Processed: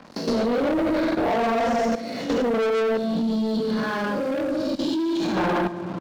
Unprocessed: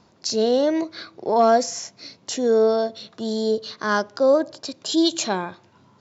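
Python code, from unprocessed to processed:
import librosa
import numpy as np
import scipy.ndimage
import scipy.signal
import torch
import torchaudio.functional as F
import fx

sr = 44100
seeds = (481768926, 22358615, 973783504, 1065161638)

y = fx.spec_blur(x, sr, span_ms=199.0)
y = scipy.signal.sosfilt(scipy.signal.butter(2, 2300.0, 'lowpass', fs=sr, output='sos'), y)
y = fx.room_shoebox(y, sr, seeds[0], volume_m3=280.0, walls='mixed', distance_m=2.2)
y = 10.0 ** (-15.0 / 20.0) * np.tanh(y / 10.0 ** (-15.0 / 20.0))
y = scipy.signal.sosfilt(scipy.signal.butter(2, 130.0, 'highpass', fs=sr, output='sos'), y)
y = fx.hum_notches(y, sr, base_hz=50, count=9)
y = fx.level_steps(y, sr, step_db=16)
y = fx.peak_eq(y, sr, hz=920.0, db=-13.0, octaves=3.0, at=(2.97, 5.37))
y = fx.leveller(y, sr, passes=3)
y = fx.band_squash(y, sr, depth_pct=40)
y = y * 10.0 ** (4.0 / 20.0)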